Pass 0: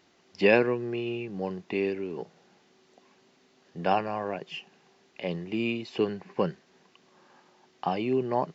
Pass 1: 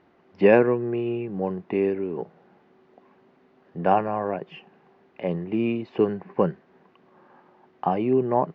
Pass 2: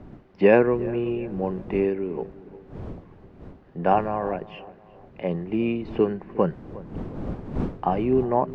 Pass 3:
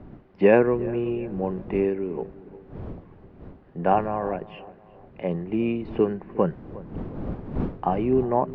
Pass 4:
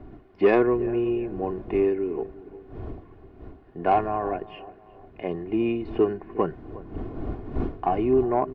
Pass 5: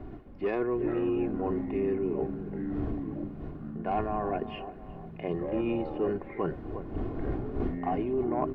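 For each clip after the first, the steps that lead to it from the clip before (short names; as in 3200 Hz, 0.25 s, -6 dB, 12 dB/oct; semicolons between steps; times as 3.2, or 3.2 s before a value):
LPF 1500 Hz 12 dB/oct; gain +5.5 dB
wind noise 270 Hz -38 dBFS; darkening echo 0.359 s, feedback 46%, low-pass 1500 Hz, level -18 dB
air absorption 150 m
comb 2.8 ms, depth 57%; soft clip -8.5 dBFS, distortion -19 dB; gain -1 dB
reverse; compressor 6:1, threshold -29 dBFS, peak gain reduction 14.5 dB; reverse; echoes that change speed 0.259 s, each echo -5 st, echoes 3, each echo -6 dB; gain +1.5 dB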